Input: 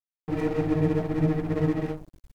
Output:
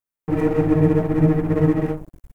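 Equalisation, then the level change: peaking EQ 4.3 kHz -10.5 dB 1.4 oct; band-stop 710 Hz, Q 12; +7.5 dB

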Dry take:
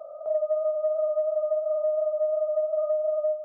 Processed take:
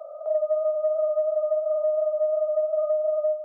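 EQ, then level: high-pass 440 Hz 24 dB/octave; +2.0 dB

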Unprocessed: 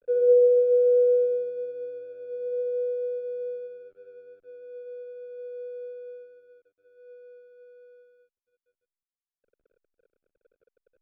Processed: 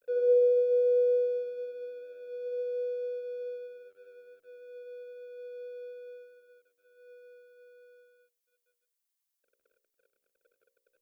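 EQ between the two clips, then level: tilt EQ +3.5 dB/octave; bass shelf 410 Hz -3 dB; hum notches 60/120/180/240/300/360/420/480/540 Hz; 0.0 dB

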